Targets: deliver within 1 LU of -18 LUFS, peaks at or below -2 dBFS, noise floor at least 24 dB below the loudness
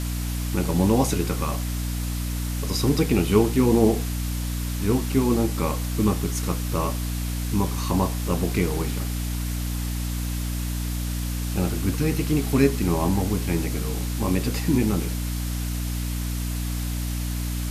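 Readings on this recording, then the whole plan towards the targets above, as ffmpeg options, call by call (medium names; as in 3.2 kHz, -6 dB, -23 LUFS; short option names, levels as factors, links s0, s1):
hum 60 Hz; highest harmonic 300 Hz; hum level -25 dBFS; noise floor -28 dBFS; noise floor target -49 dBFS; loudness -25.0 LUFS; peak level -6.0 dBFS; loudness target -18.0 LUFS
-> -af "bandreject=f=60:t=h:w=6,bandreject=f=120:t=h:w=6,bandreject=f=180:t=h:w=6,bandreject=f=240:t=h:w=6,bandreject=f=300:t=h:w=6"
-af "afftdn=nr=21:nf=-28"
-af "volume=2.24,alimiter=limit=0.794:level=0:latency=1"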